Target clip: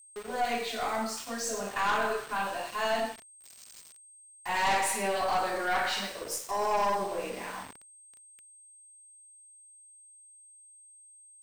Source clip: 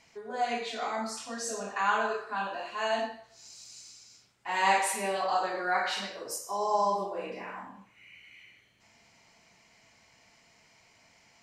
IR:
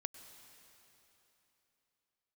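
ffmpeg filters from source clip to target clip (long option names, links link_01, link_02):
-af "aeval=exprs='val(0)*gte(abs(val(0)),0.00708)':channel_layout=same,aeval=exprs='val(0)+0.00178*sin(2*PI*8400*n/s)':channel_layout=same,aeval=exprs='(tanh(20*val(0)+0.35)-tanh(0.35))/20':channel_layout=same,volume=3.5dB"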